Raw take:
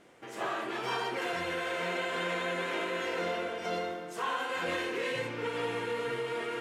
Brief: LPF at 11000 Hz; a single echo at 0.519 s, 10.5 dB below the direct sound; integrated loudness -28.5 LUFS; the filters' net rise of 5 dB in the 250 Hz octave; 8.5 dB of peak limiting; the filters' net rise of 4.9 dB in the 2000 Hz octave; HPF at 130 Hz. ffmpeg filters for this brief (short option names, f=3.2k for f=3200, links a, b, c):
-af "highpass=130,lowpass=11k,equalizer=f=250:t=o:g=8,equalizer=f=2k:t=o:g=6,alimiter=level_in=2dB:limit=-24dB:level=0:latency=1,volume=-2dB,aecho=1:1:519:0.299,volume=5dB"